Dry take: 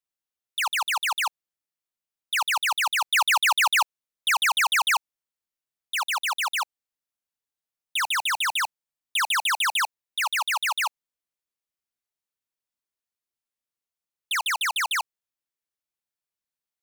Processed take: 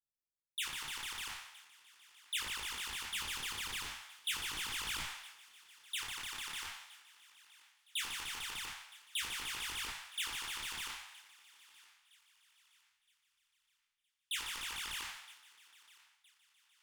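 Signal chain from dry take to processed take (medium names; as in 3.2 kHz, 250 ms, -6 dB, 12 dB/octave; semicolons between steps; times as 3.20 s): spectral sustain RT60 0.82 s; in parallel at -7.5 dB: sine folder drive 13 dB, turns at 0 dBFS; on the sum: transient shaper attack +8 dB, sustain 0 dB; level rider gain up to 4.5 dB; amplifier tone stack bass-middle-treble 10-0-1; on a send: thinning echo 966 ms, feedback 39%, high-pass 950 Hz, level -19.5 dB; on the sum: detune thickener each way 14 cents; trim -2.5 dB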